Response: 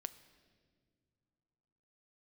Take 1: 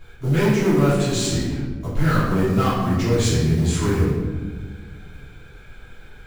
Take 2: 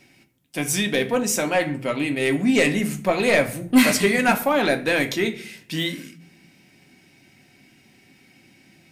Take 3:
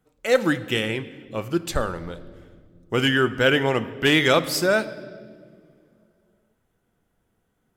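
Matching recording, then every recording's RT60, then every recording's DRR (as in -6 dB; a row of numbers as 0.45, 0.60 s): 3; 1.4 s, 0.55 s, not exponential; -13.0, 5.5, 12.0 dB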